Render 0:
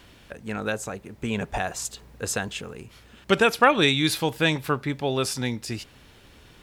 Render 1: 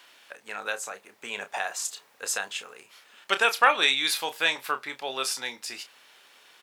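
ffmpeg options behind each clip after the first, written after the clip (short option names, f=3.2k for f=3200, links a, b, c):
-filter_complex "[0:a]highpass=800,asplit=2[a][b];[b]adelay=30,volume=-10dB[c];[a][c]amix=inputs=2:normalize=0"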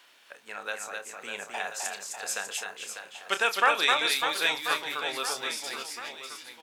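-af "aecho=1:1:260|598|1037|1609|2351:0.631|0.398|0.251|0.158|0.1,volume=-3.5dB"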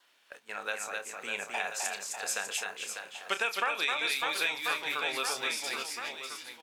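-af "agate=range=-8dB:threshold=-49dB:ratio=16:detection=peak,adynamicequalizer=threshold=0.00501:dfrequency=2400:dqfactor=6.1:tfrequency=2400:tqfactor=6.1:attack=5:release=100:ratio=0.375:range=3.5:mode=boostabove:tftype=bell,acompressor=threshold=-27dB:ratio=6"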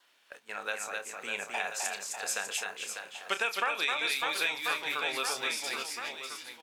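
-af anull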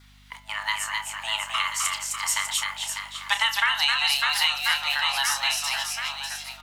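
-af "afreqshift=430,bandreject=f=125.1:t=h:w=4,bandreject=f=250.2:t=h:w=4,bandreject=f=375.3:t=h:w=4,bandreject=f=500.4:t=h:w=4,bandreject=f=625.5:t=h:w=4,bandreject=f=750.6:t=h:w=4,bandreject=f=875.7:t=h:w=4,bandreject=f=1.0008k:t=h:w=4,bandreject=f=1.1259k:t=h:w=4,bandreject=f=1.251k:t=h:w=4,bandreject=f=1.3761k:t=h:w=4,bandreject=f=1.5012k:t=h:w=4,bandreject=f=1.6263k:t=h:w=4,bandreject=f=1.7514k:t=h:w=4,bandreject=f=1.8765k:t=h:w=4,bandreject=f=2.0016k:t=h:w=4,bandreject=f=2.1267k:t=h:w=4,bandreject=f=2.2518k:t=h:w=4,bandreject=f=2.3769k:t=h:w=4,bandreject=f=2.502k:t=h:w=4,bandreject=f=2.6271k:t=h:w=4,bandreject=f=2.7522k:t=h:w=4,bandreject=f=2.8773k:t=h:w=4,bandreject=f=3.0024k:t=h:w=4,bandreject=f=3.1275k:t=h:w=4,bandreject=f=3.2526k:t=h:w=4,bandreject=f=3.3777k:t=h:w=4,bandreject=f=3.5028k:t=h:w=4,bandreject=f=3.6279k:t=h:w=4,aeval=exprs='val(0)+0.000891*(sin(2*PI*50*n/s)+sin(2*PI*2*50*n/s)/2+sin(2*PI*3*50*n/s)/3+sin(2*PI*4*50*n/s)/4+sin(2*PI*5*50*n/s)/5)':c=same,volume=8dB"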